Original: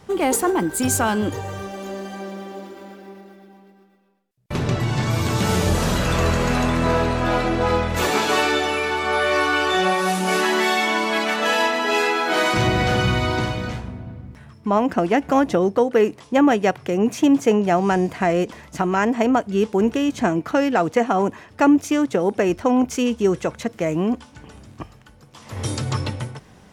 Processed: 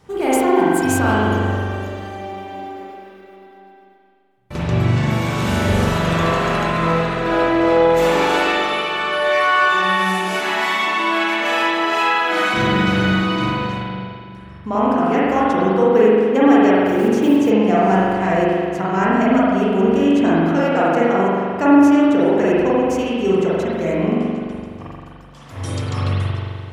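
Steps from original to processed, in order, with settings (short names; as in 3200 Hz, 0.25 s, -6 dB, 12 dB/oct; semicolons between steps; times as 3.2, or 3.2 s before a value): 16.78–17.51 block floating point 5-bit; spring tank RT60 2.1 s, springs 42 ms, chirp 65 ms, DRR -8 dB; gain -5 dB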